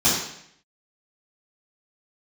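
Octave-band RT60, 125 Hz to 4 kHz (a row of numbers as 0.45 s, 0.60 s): 0.80 s, 0.75 s, 0.70 s, 0.70 s, 0.75 s, 0.70 s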